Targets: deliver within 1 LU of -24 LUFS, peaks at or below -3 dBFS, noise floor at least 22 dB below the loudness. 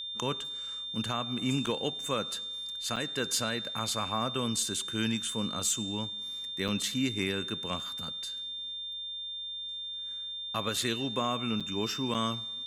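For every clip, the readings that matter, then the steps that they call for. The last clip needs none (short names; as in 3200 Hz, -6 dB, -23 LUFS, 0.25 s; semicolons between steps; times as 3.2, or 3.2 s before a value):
dropouts 5; longest dropout 6.5 ms; steady tone 3600 Hz; tone level -36 dBFS; loudness -32.0 LUFS; peak -16.5 dBFS; loudness target -24.0 LUFS
-> interpolate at 1.66/2.96/6.68/11.6/12.14, 6.5 ms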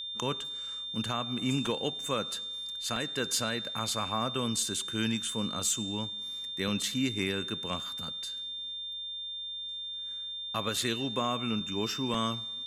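dropouts 0; steady tone 3600 Hz; tone level -36 dBFS
-> notch 3600 Hz, Q 30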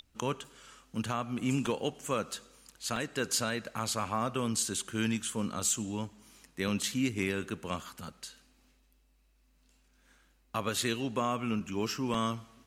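steady tone none; loudness -33.5 LUFS; peak -17.0 dBFS; loudness target -24.0 LUFS
-> gain +9.5 dB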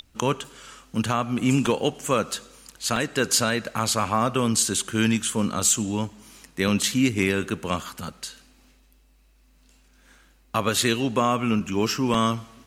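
loudness -24.0 LUFS; peak -7.5 dBFS; noise floor -58 dBFS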